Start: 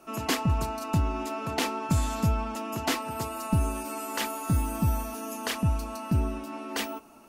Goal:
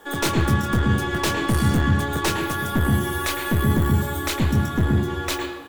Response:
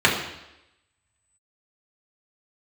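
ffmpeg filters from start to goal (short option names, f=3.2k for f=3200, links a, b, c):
-filter_complex "[0:a]asplit=2[a][b];[b]adelay=31,volume=-9.5dB[c];[a][c]amix=inputs=2:normalize=0,asetrate=56448,aresample=44100,aeval=exprs='(tanh(15.8*val(0)+0.5)-tanh(0.5))/15.8':c=same,asplit=2[d][e];[1:a]atrim=start_sample=2205,lowshelf=f=370:g=8.5,adelay=107[f];[e][f]afir=irnorm=-1:irlink=0,volume=-26.5dB[g];[d][g]amix=inputs=2:normalize=0,volume=8dB"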